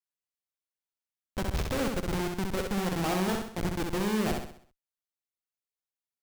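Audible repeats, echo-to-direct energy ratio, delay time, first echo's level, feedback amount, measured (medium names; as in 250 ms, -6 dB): 5, -3.0 dB, 65 ms, -4.0 dB, 44%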